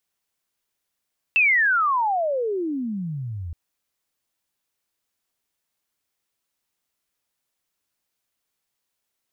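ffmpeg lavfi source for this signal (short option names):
-f lavfi -i "aevalsrc='pow(10,(-14-15*t/2.17)/20)*sin(2*PI*2700*2.17/log(79/2700)*(exp(log(79/2700)*t/2.17)-1))':d=2.17:s=44100"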